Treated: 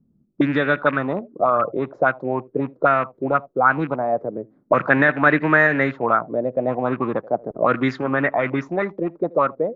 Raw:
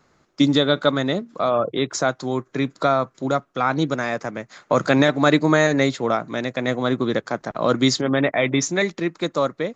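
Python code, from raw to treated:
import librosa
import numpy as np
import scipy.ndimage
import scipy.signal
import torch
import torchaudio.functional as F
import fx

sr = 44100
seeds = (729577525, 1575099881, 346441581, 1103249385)

y = fx.rattle_buzz(x, sr, strikes_db=-27.0, level_db=-20.0)
y = y + 10.0 ** (-23.5 / 20.0) * np.pad(y, (int(80 * sr / 1000.0), 0))[:len(y)]
y = fx.envelope_lowpass(y, sr, base_hz=210.0, top_hz=1700.0, q=4.0, full_db=-14.5, direction='up')
y = F.gain(torch.from_numpy(y), -3.0).numpy()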